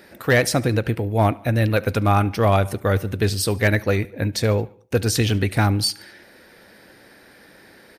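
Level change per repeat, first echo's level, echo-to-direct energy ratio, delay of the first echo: −5.5 dB, −23.5 dB, −22.0 dB, 72 ms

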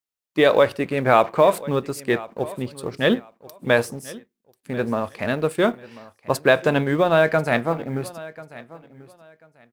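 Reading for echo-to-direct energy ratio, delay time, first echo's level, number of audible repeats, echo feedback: −19.0 dB, 1,040 ms, −19.0 dB, 2, 21%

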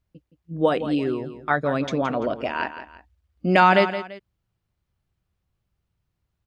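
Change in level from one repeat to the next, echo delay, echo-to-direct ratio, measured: −9.5 dB, 169 ms, −11.0 dB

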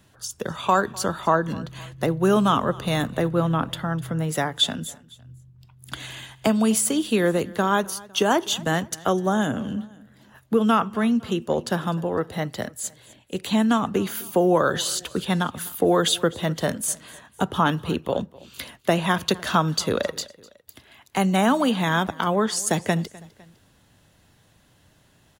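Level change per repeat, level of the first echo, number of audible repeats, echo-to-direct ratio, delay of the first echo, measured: −6.0 dB, −22.0 dB, 2, −21.0 dB, 253 ms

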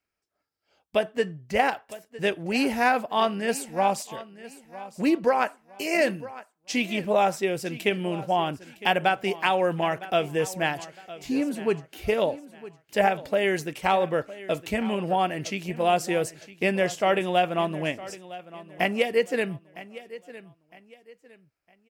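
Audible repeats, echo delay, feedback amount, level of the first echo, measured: 2, 959 ms, 32%, −17.0 dB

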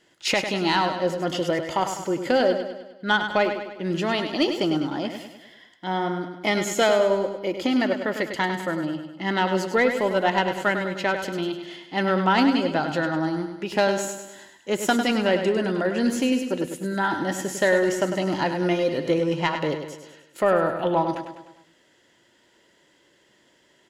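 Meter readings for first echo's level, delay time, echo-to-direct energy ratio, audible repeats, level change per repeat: −8.0 dB, 101 ms, −6.5 dB, 5, −5.5 dB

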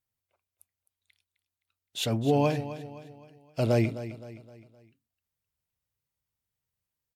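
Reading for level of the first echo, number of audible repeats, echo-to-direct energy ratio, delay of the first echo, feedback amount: −13.5 dB, 4, −12.5 dB, 259 ms, 44%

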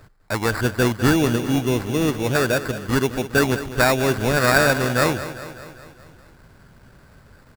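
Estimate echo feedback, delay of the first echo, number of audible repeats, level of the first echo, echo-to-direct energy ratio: 59%, 201 ms, 5, −13.0 dB, −11.0 dB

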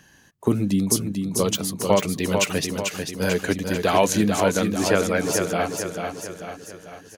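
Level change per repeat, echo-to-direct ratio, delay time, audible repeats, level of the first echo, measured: −6.0 dB, −4.0 dB, 443 ms, 5, −5.5 dB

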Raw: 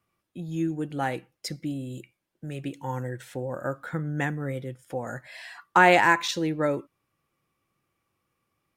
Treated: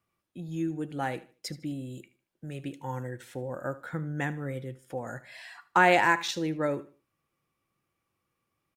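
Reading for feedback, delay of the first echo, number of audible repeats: 30%, 76 ms, 2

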